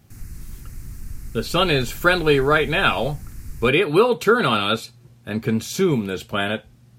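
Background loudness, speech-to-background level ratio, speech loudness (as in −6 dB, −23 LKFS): −39.5 LKFS, 19.5 dB, −20.0 LKFS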